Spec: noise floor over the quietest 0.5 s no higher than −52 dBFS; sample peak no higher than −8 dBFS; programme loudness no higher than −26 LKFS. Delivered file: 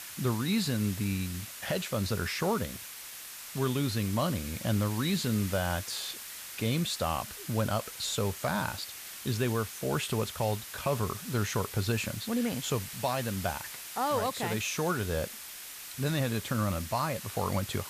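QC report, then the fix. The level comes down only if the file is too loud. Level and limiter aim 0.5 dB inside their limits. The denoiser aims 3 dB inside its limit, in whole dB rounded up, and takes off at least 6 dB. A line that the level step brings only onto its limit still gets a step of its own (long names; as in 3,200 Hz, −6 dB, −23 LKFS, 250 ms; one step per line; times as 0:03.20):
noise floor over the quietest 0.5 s −44 dBFS: out of spec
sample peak −17.5 dBFS: in spec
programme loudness −32.0 LKFS: in spec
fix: broadband denoise 11 dB, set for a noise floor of −44 dBFS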